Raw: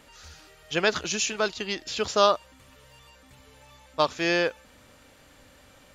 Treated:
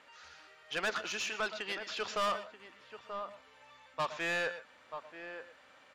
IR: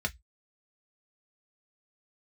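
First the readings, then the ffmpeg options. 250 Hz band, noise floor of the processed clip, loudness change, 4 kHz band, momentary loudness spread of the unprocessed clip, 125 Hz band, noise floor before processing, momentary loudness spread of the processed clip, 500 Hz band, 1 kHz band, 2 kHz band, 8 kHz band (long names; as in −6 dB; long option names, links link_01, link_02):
−15.0 dB, −61 dBFS, −11.0 dB, −10.0 dB, 9 LU, −13.5 dB, −55 dBFS, 21 LU, −12.5 dB, −8.5 dB, −6.0 dB, −13.5 dB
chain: -filter_complex "[0:a]aderivative,aeval=exprs='0.178*sin(PI/2*1.58*val(0)/0.178)':channel_layout=same,lowpass=1500,asplit=2[link_01][link_02];[link_02]adelay=932.9,volume=-13dB,highshelf=frequency=4000:gain=-21[link_03];[link_01][link_03]amix=inputs=2:normalize=0,asoftclip=type=tanh:threshold=-35dB,asplit=2[link_04][link_05];[link_05]highpass=170[link_06];[1:a]atrim=start_sample=2205,adelay=113[link_07];[link_06][link_07]afir=irnorm=-1:irlink=0,volume=-17dB[link_08];[link_04][link_08]amix=inputs=2:normalize=0,volume=7dB"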